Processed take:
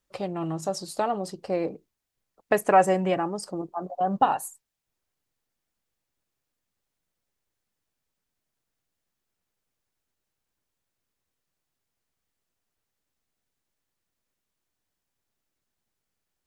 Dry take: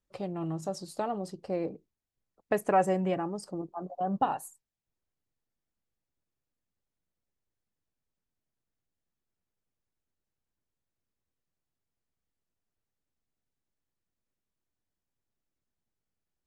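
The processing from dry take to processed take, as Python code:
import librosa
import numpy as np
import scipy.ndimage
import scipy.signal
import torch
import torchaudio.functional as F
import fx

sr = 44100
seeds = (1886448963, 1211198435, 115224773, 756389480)

y = fx.low_shelf(x, sr, hz=440.0, db=-7.0)
y = F.gain(torch.from_numpy(y), 8.5).numpy()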